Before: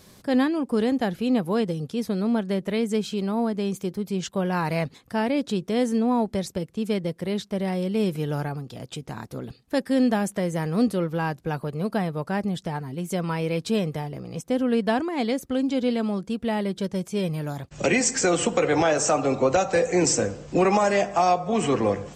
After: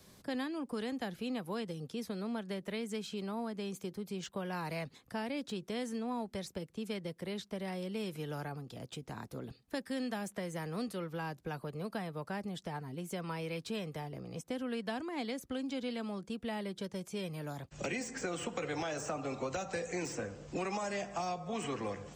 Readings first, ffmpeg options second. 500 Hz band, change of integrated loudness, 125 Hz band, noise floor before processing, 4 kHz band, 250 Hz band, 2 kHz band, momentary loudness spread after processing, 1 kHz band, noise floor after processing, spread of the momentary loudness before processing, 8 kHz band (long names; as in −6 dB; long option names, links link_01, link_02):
−15.0 dB, −15.0 dB, −14.0 dB, −53 dBFS, −10.5 dB, −15.0 dB, −12.0 dB, 5 LU, −14.5 dB, −63 dBFS, 9 LU, −17.5 dB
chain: -filter_complex "[0:a]acrossover=split=260|920|3000[link_01][link_02][link_03][link_04];[link_01]acompressor=threshold=-36dB:ratio=4[link_05];[link_02]acompressor=threshold=-33dB:ratio=4[link_06];[link_03]acompressor=threshold=-35dB:ratio=4[link_07];[link_04]acompressor=threshold=-38dB:ratio=4[link_08];[link_05][link_06][link_07][link_08]amix=inputs=4:normalize=0,acrossover=split=380|1200|3800[link_09][link_10][link_11][link_12];[link_12]asoftclip=type=hard:threshold=-33.5dB[link_13];[link_09][link_10][link_11][link_13]amix=inputs=4:normalize=0,volume=-8dB"